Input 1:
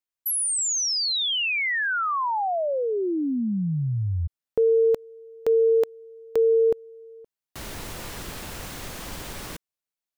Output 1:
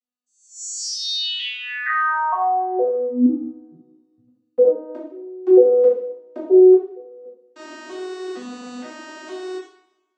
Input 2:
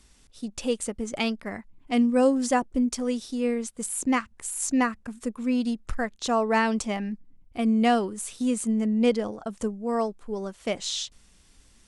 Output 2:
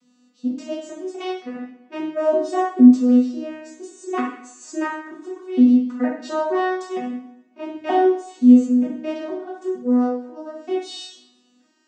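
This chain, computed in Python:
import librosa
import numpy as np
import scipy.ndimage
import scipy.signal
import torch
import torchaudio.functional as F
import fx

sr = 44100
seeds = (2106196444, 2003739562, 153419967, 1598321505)

y = fx.vocoder_arp(x, sr, chord='major triad', root=59, every_ms=464)
y = fx.rev_double_slope(y, sr, seeds[0], early_s=0.61, late_s=1.9, knee_db=-27, drr_db=-7.0)
y = F.gain(torch.from_numpy(y), -2.0).numpy()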